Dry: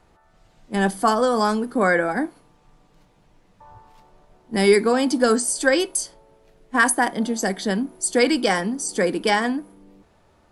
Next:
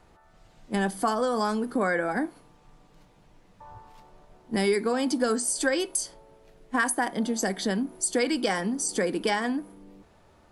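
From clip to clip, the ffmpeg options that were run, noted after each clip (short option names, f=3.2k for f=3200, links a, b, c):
-af "acompressor=threshold=-25dB:ratio=2.5"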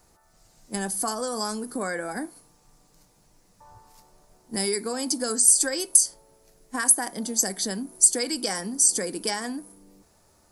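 -af "aexciter=amount=6.2:drive=3.9:freq=4.6k,volume=-4.5dB"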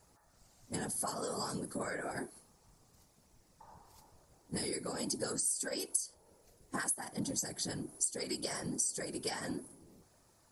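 -af "acompressor=threshold=-29dB:ratio=3,afftfilt=real='hypot(re,im)*cos(2*PI*random(0))':imag='hypot(re,im)*sin(2*PI*random(1))':win_size=512:overlap=0.75"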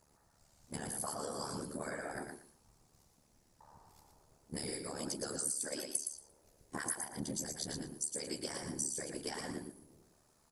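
-filter_complex "[0:a]tremolo=f=73:d=0.889,asplit=2[a][b];[b]aecho=0:1:116|232|348:0.562|0.101|0.0182[c];[a][c]amix=inputs=2:normalize=0"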